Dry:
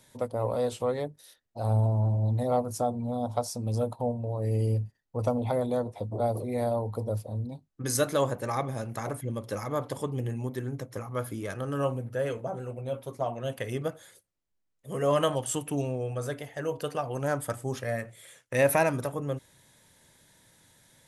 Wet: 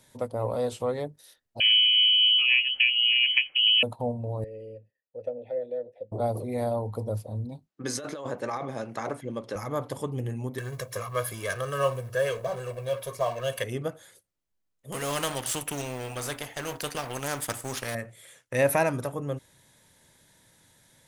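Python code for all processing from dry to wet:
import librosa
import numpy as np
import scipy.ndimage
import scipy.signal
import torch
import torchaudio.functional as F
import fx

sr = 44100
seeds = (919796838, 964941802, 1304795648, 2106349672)

y = fx.chain(x, sr, fx.low_shelf(hz=430.0, db=4.5),
    fx.freq_invert(carrier_hz=3100),
    fx.band_squash(depth_pct=100), at=(1.6, 3.83))
y = fx.chain(y, sr, fx.vowel_filter(vowel='e'),
    fx.low_shelf(hz=220.0, db=7.0), at=(4.44, 6.12))
y = fx.chain(y, sr, fx.bandpass_edges(low_hz=210.0, high_hz=5800.0),
    fx.over_compress(threshold_db=-32.0, ratio=-1.0), at=(7.67, 9.56))
y = fx.chain(y, sr, fx.law_mismatch(coded='mu'),
    fx.tilt_shelf(db=-5.5, hz=760.0),
    fx.comb(ms=1.8, depth=0.76), at=(10.58, 13.64))
y = fx.chain(y, sr, fx.law_mismatch(coded='A'),
    fx.spectral_comp(ratio=2.0), at=(14.92, 17.95))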